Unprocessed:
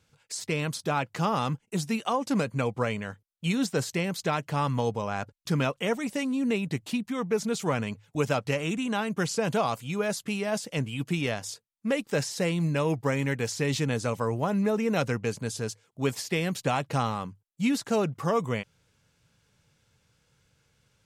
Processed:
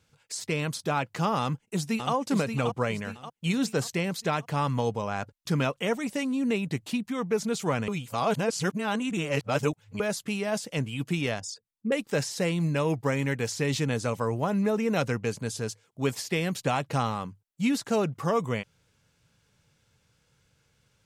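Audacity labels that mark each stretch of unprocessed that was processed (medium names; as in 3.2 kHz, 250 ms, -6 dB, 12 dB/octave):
1.410000	2.130000	echo throw 580 ms, feedback 45%, level -6.5 dB
7.880000	10.000000	reverse
11.400000	11.920000	resonances exaggerated exponent 2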